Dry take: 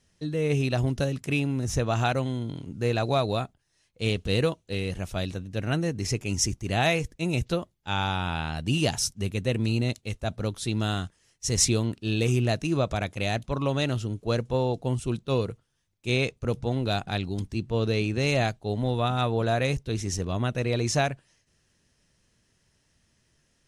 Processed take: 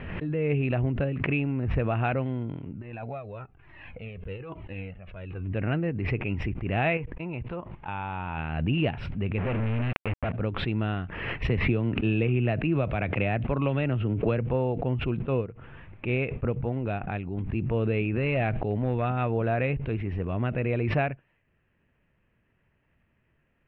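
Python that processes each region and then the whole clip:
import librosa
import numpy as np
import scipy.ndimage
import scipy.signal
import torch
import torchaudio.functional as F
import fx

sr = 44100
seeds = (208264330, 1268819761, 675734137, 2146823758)

y = fx.chain(x, sr, fx.tremolo(hz=1.1, depth=0.79),
    fx.over_compress(threshold_db=-31.0, ratio=-0.5),
    fx.comb_cascade(direction='falling', hz=1.1), at=(2.8, 5.55))
y = fx.chain(y, sr, fx.level_steps(step_db=11),
    fx.peak_eq(hz=960.0, db=9.0, octaves=0.43), at=(6.97, 8.38))
y = fx.chain(y, sr, fx.lowpass(hz=3400.0, slope=12),
    fx.quant_companded(bits=2), at=(9.38, 10.32))
y = fx.chain(y, sr, fx.lowpass(hz=4700.0, slope=24),
    fx.band_squash(depth_pct=100), at=(11.49, 14.47))
y = fx.chain(y, sr, fx.lowpass(hz=8800.0, slope=12),
    fx.high_shelf(hz=5600.0, db=-10.0),
    fx.upward_expand(threshold_db=-37.0, expansion=1.5), at=(15.22, 17.37))
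y = fx.chain(y, sr, fx.overload_stage(gain_db=18.0),
    fx.sustainer(db_per_s=27.0), at=(18.16, 19.12))
y = scipy.signal.sosfilt(scipy.signal.ellip(4, 1.0, 60, 2600.0, 'lowpass', fs=sr, output='sos'), y)
y = fx.dynamic_eq(y, sr, hz=1000.0, q=1.4, threshold_db=-39.0, ratio=4.0, max_db=-4)
y = fx.pre_swell(y, sr, db_per_s=39.0)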